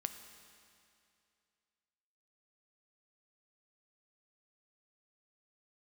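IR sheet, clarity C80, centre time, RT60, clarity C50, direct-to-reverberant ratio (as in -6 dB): 9.5 dB, 29 ms, 2.5 s, 8.5 dB, 7.5 dB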